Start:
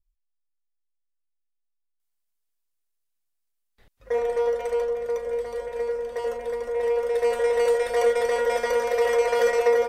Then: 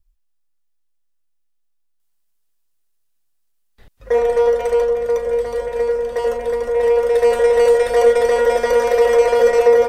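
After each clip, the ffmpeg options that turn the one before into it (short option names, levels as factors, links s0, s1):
-filter_complex "[0:a]lowshelf=f=240:g=4.5,bandreject=f=2200:w=20,acrossover=split=730[s0][s1];[s1]alimiter=level_in=1.06:limit=0.0631:level=0:latency=1:release=158,volume=0.944[s2];[s0][s2]amix=inputs=2:normalize=0,volume=2.51"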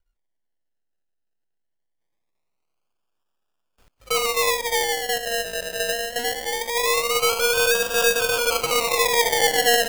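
-af "aeval=exprs='if(lt(val(0),0),0.708*val(0),val(0))':c=same,acrusher=samples=30:mix=1:aa=0.000001:lfo=1:lforange=18:lforate=0.22,tiltshelf=f=910:g=-6,volume=0.562"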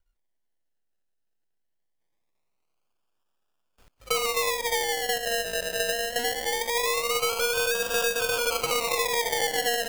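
-af "acompressor=threshold=0.0891:ratio=6"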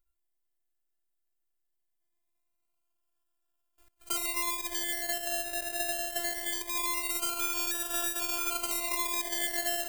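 -af "aexciter=amount=1.7:drive=8.5:freq=7500,afftfilt=real='hypot(re,im)*cos(PI*b)':imag='0':win_size=512:overlap=0.75,volume=0.631"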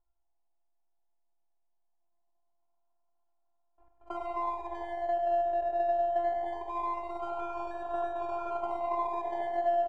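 -af "lowpass=f=850:t=q:w=7.5,aecho=1:1:100|200|300|400|500|600|700:0.398|0.223|0.125|0.0699|0.0392|0.0219|0.0123"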